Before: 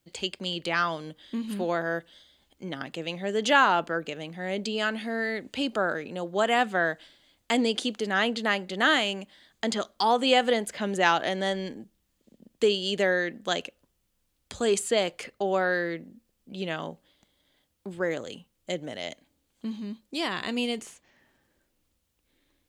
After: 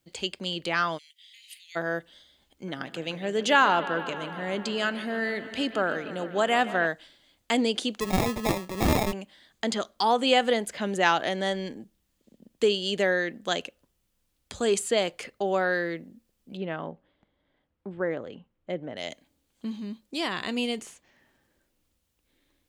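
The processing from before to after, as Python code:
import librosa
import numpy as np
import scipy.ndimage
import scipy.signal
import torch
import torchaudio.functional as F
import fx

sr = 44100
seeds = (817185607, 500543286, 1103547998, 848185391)

y = fx.cheby1_highpass(x, sr, hz=2000.0, order=6, at=(0.97, 1.75), fade=0.02)
y = fx.echo_bbd(y, sr, ms=150, stages=4096, feedback_pct=78, wet_db=-15, at=(2.67, 6.86), fade=0.02)
y = fx.sample_hold(y, sr, seeds[0], rate_hz=1500.0, jitter_pct=0, at=(8.0, 9.13))
y = fx.lowpass(y, sr, hz=1800.0, slope=12, at=(16.57, 18.97))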